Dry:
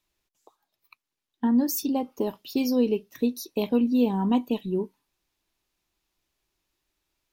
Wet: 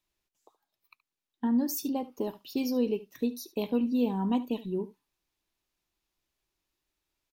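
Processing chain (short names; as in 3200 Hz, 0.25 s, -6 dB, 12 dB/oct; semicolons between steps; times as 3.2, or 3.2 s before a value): echo 73 ms -17 dB; gain -5 dB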